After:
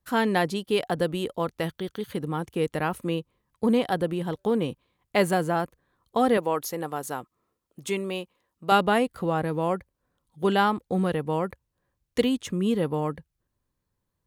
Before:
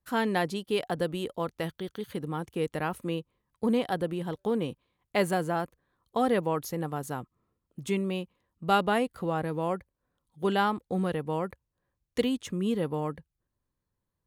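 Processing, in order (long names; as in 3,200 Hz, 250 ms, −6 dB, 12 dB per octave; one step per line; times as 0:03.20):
0:06.37–0:08.72: bass and treble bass −11 dB, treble +2 dB
level +4 dB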